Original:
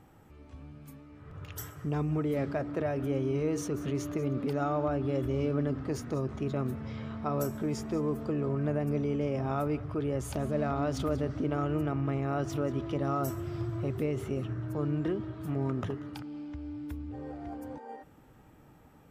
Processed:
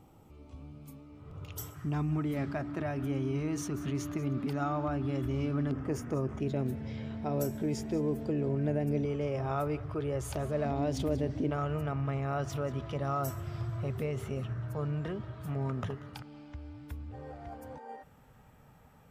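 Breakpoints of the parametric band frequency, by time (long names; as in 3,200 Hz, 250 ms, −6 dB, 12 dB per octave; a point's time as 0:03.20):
parametric band −15 dB 0.39 octaves
1,700 Hz
from 0:01.74 490 Hz
from 0:05.71 4,100 Hz
from 0:06.40 1,200 Hz
from 0:09.05 240 Hz
from 0:10.65 1,300 Hz
from 0:11.51 320 Hz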